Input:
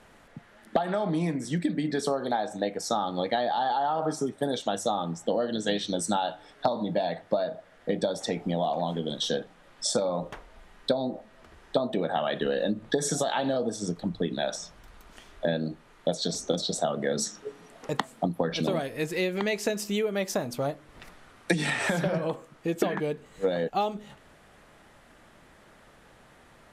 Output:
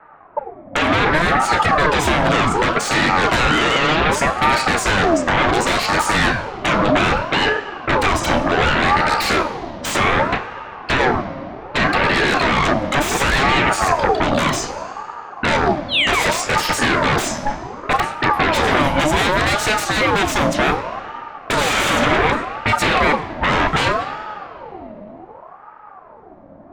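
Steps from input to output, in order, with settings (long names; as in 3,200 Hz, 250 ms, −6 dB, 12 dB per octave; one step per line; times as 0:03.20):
noise gate −41 dBFS, range −7 dB
sound drawn into the spectrogram fall, 0:15.88–0:16.31, 1,100–4,000 Hz −35 dBFS
high-shelf EQ 7,300 Hz +6.5 dB
in parallel at 0 dB: brickwall limiter −21.5 dBFS, peak gain reduction 11 dB
on the sum: low-pass that shuts in the quiet parts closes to 360 Hz, open at −21.5 dBFS
sine wavefolder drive 18 dB, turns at −7.5 dBFS
convolution reverb RT60 3.5 s, pre-delay 3 ms, DRR 8.5 dB
ring modulator whose carrier an LFO sweeps 740 Hz, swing 45%, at 0.66 Hz
level −8.5 dB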